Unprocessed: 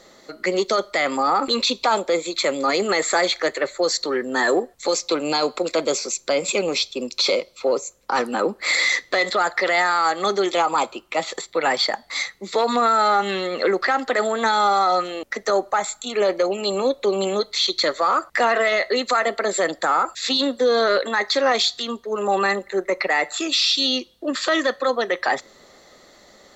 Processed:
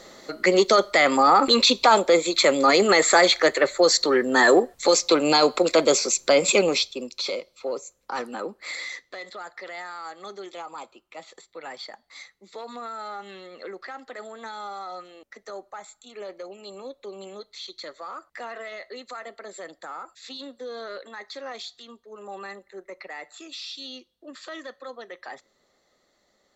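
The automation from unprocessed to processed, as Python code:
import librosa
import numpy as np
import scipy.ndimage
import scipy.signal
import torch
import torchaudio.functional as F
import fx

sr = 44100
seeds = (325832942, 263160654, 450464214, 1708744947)

y = fx.gain(x, sr, db=fx.line((6.6, 3.0), (7.17, -9.0), (8.25, -9.0), (9.18, -18.0)))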